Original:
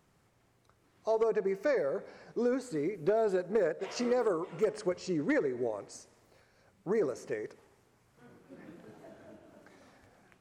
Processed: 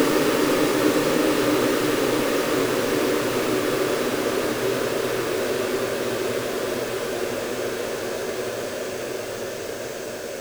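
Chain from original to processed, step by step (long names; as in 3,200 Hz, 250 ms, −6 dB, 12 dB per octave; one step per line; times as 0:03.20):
each half-wave held at its own peak
extreme stretch with random phases 21×, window 1.00 s, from 0:05.46
level +7.5 dB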